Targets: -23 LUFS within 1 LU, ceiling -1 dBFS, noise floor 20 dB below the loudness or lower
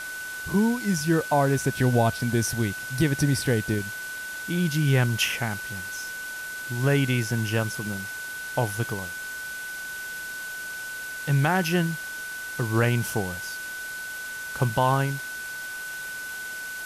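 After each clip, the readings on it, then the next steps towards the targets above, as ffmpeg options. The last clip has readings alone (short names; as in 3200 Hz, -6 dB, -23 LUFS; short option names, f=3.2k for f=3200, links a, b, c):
steady tone 1500 Hz; tone level -33 dBFS; noise floor -35 dBFS; noise floor target -47 dBFS; loudness -26.5 LUFS; peak -11.0 dBFS; loudness target -23.0 LUFS
-> -af "bandreject=f=1.5k:w=30"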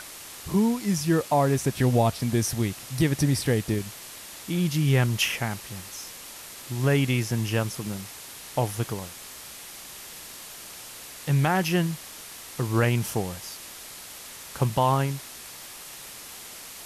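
steady tone none; noise floor -43 dBFS; noise floor target -46 dBFS
-> -af "afftdn=nr=6:nf=-43"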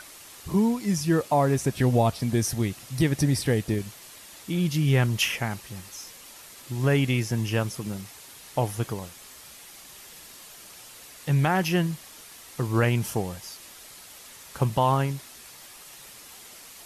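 noise floor -47 dBFS; loudness -25.5 LUFS; peak -11.5 dBFS; loudness target -23.0 LUFS
-> -af "volume=2.5dB"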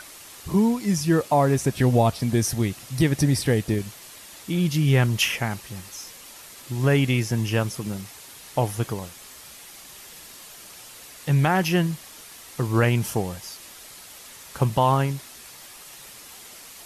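loudness -23.0 LUFS; peak -9.0 dBFS; noise floor -44 dBFS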